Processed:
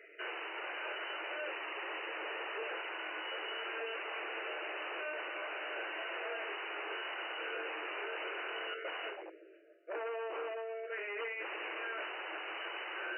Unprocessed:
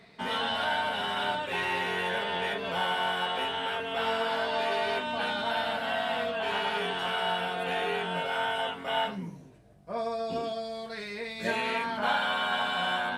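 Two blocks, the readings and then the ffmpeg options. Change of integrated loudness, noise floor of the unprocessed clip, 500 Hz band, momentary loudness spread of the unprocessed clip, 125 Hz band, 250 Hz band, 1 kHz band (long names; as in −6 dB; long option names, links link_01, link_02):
−10.0 dB, −47 dBFS, −10.0 dB, 5 LU, below −40 dB, −14.5 dB, −13.5 dB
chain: -af "asuperstop=centerf=910:order=12:qfactor=1.4,bandreject=frequency=60:width_type=h:width=6,bandreject=frequency=120:width_type=h:width=6,bandreject=frequency=180:width_type=h:width=6,bandreject=frequency=240:width_type=h:width=6,bandreject=frequency=300:width_type=h:width=6,bandreject=frequency=360:width_type=h:width=6,bandreject=frequency=420:width_type=h:width=6,aeval=exprs='0.0168*(abs(mod(val(0)/0.0168+3,4)-2)-1)':channel_layout=same,afftfilt=real='re*between(b*sr/4096,310,3000)':imag='im*between(b*sr/4096,310,3000)':win_size=4096:overlap=0.75,volume=2dB"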